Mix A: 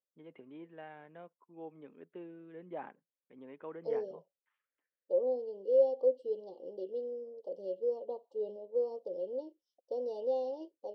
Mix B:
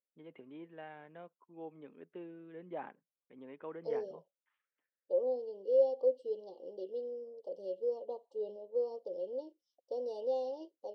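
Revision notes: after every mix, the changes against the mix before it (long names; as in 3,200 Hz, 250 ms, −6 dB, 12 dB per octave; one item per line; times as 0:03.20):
second voice: add low-shelf EQ 340 Hz −5 dB
master: add high-shelf EQ 4,800 Hz +5.5 dB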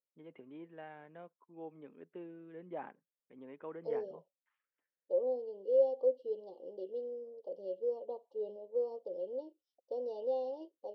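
master: add high-frequency loss of the air 170 metres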